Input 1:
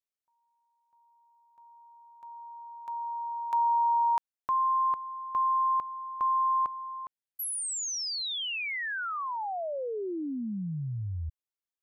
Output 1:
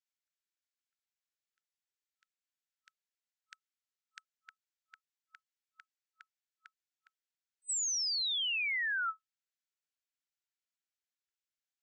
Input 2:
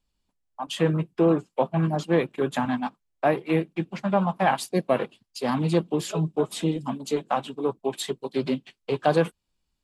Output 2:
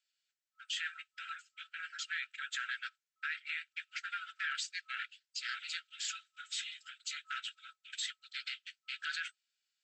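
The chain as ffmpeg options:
-af "afftfilt=real='re*between(b*sr/4096,1300,8100)':imag='im*between(b*sr/4096,1300,8100)':win_size=4096:overlap=0.75,alimiter=level_in=4dB:limit=-24dB:level=0:latency=1:release=16,volume=-4dB"

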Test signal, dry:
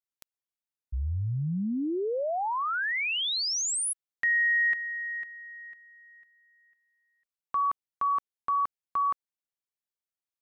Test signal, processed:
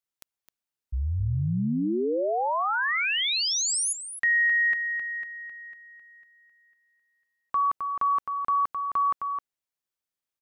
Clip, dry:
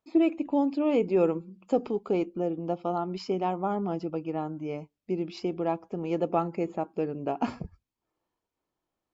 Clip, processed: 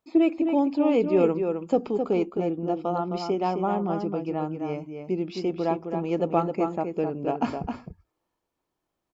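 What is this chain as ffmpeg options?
-filter_complex "[0:a]asplit=2[a][b];[b]adelay=262.4,volume=-6dB,highshelf=f=4k:g=-5.9[c];[a][c]amix=inputs=2:normalize=0,volume=2.5dB"

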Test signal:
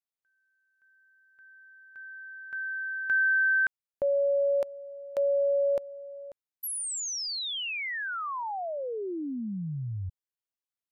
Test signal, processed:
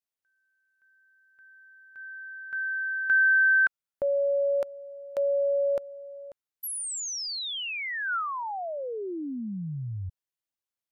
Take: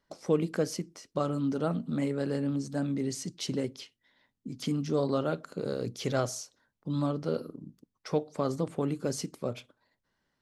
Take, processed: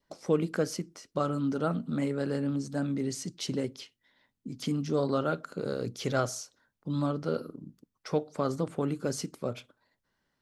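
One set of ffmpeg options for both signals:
-af "adynamicequalizer=threshold=0.00316:dfrequency=1400:dqfactor=4:tfrequency=1400:tqfactor=4:attack=5:release=100:ratio=0.375:range=3:mode=boostabove:tftype=bell"

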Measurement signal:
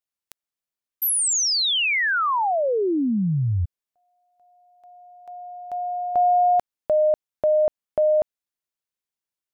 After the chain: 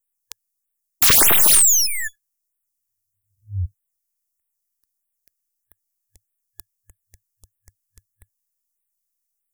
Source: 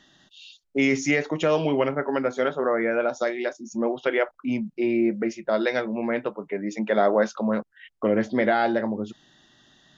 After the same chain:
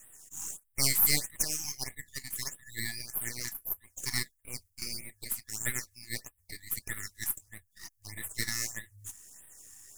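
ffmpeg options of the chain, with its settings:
-filter_complex "[0:a]afftfilt=real='re*(1-between(b*sr/4096,100,1700))':imag='im*(1-between(b*sr/4096,100,1700))':win_size=4096:overlap=0.75,acrossover=split=140|900|1800[a][b][c][d];[d]aeval=exprs='abs(val(0))':c=same[e];[a][b][c][e]amix=inputs=4:normalize=0,aexciter=amount=8.3:drive=1.1:freq=5.3k,aeval=exprs='(mod(2.66*val(0)+1,2)-1)/2.66':c=same,afftfilt=real='re*(1-between(b*sr/1024,460*pow(5700/460,0.5+0.5*sin(2*PI*1.6*pts/sr))/1.41,460*pow(5700/460,0.5+0.5*sin(2*PI*1.6*pts/sr))*1.41))':imag='im*(1-between(b*sr/1024,460*pow(5700/460,0.5+0.5*sin(2*PI*1.6*pts/sr))/1.41,460*pow(5700/460,0.5+0.5*sin(2*PI*1.6*pts/sr))*1.41))':win_size=1024:overlap=0.75"

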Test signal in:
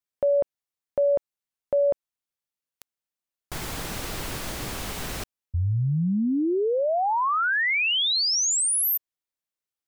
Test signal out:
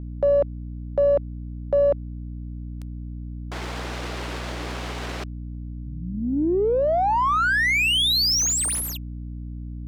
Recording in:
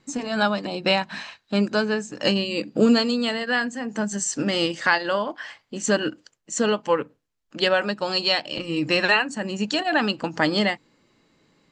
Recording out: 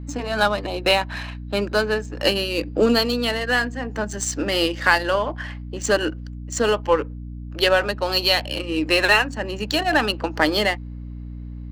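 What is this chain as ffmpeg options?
-af "highpass=f=270:w=0.5412,highpass=f=270:w=1.3066,aeval=exprs='val(0)+0.0178*(sin(2*PI*60*n/s)+sin(2*PI*2*60*n/s)/2+sin(2*PI*3*60*n/s)/3+sin(2*PI*4*60*n/s)/4+sin(2*PI*5*60*n/s)/5)':c=same,adynamicsmooth=sensitivity=6:basefreq=2.8k,aeval=exprs='0.596*(cos(1*acos(clip(val(0)/0.596,-1,1)))-cos(1*PI/2))+0.0119*(cos(6*acos(clip(val(0)/0.596,-1,1)))-cos(6*PI/2))':c=same,volume=3dB"

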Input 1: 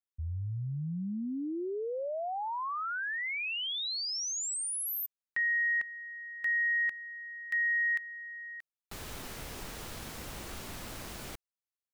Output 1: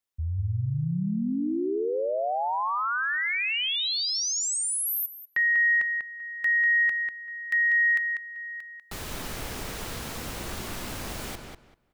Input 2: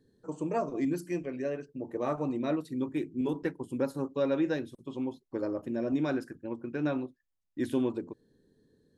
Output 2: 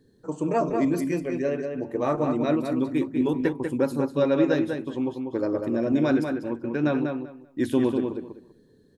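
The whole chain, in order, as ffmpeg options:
-filter_complex "[0:a]asplit=2[a][b];[b]adelay=194,lowpass=f=3.7k:p=1,volume=-5dB,asplit=2[c][d];[d]adelay=194,lowpass=f=3.7k:p=1,volume=0.2,asplit=2[e][f];[f]adelay=194,lowpass=f=3.7k:p=1,volume=0.2[g];[a][c][e][g]amix=inputs=4:normalize=0,volume=6.5dB"

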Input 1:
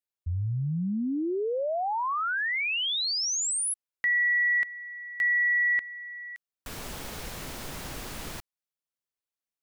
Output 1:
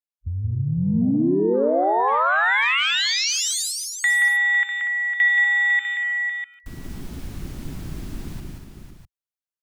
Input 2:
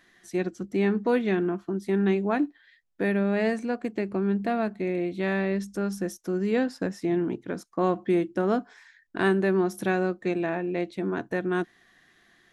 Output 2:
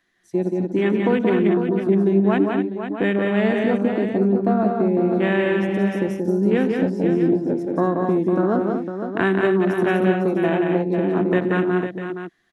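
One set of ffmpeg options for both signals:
-filter_complex "[0:a]afwtdn=0.0251,acrossover=split=200|2200|6100[a][b][c][d];[a]acompressor=threshold=-35dB:ratio=4[e];[b]acompressor=threshold=-27dB:ratio=4[f];[c]acompressor=threshold=-35dB:ratio=4[g];[d]acompressor=threshold=-41dB:ratio=4[h];[e][f][g][h]amix=inputs=4:normalize=0,asplit=2[i][j];[j]aecho=0:1:88|168|179|240|503|649:0.141|0.141|0.631|0.355|0.376|0.299[k];[i][k]amix=inputs=2:normalize=0,volume=8dB"

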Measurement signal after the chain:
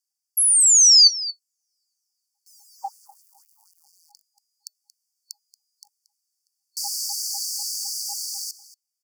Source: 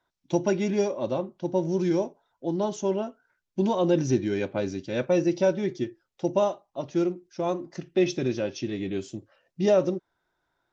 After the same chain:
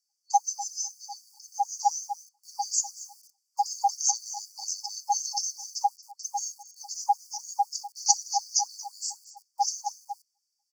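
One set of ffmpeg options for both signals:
-filter_complex "[0:a]aemphasis=mode=reproduction:type=50kf,bandreject=f=50:t=h:w=6,bandreject=f=100:t=h:w=6,bandreject=f=150:t=h:w=6,bandreject=f=200:t=h:w=6,bandreject=f=250:t=h:w=6,bandreject=f=300:t=h:w=6,aecho=1:1:230:0.141,acrossover=split=190[a][b];[a]aeval=exprs='val(0)*gte(abs(val(0)),0.00106)':c=same[c];[c][b]amix=inputs=2:normalize=0,acrossover=split=170|3000[d][e][f];[e]acompressor=threshold=-27dB:ratio=10[g];[d][g][f]amix=inputs=3:normalize=0,lowshelf=f=430:g=-4,afftfilt=real='re*(1-between(b*sr/4096,360,4000))':imag='im*(1-between(b*sr/4096,360,4000))':win_size=4096:overlap=0.75,dynaudnorm=f=530:g=7:m=5dB,afreqshift=460,alimiter=level_in=18.5dB:limit=-1dB:release=50:level=0:latency=1,afftfilt=real='re*gte(b*sr/1024,780*pow(3000/780,0.5+0.5*sin(2*PI*4*pts/sr)))':imag='im*gte(b*sr/1024,780*pow(3000/780,0.5+0.5*sin(2*PI*4*pts/sr)))':win_size=1024:overlap=0.75"

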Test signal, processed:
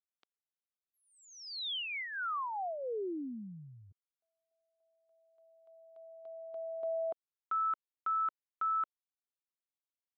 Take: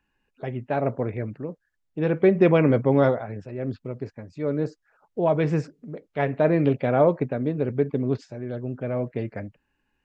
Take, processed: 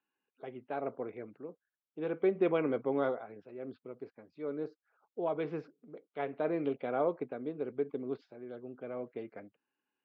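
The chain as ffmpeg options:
-af "highpass=380,equalizer=f=590:t=q:w=4:g=-7,equalizer=f=920:t=q:w=4:g=-5,equalizer=f=1.8k:t=q:w=4:g=-10,equalizer=f=2.6k:t=q:w=4:g=-6,lowpass=f=3.5k:w=0.5412,lowpass=f=3.5k:w=1.3066,volume=-6.5dB"

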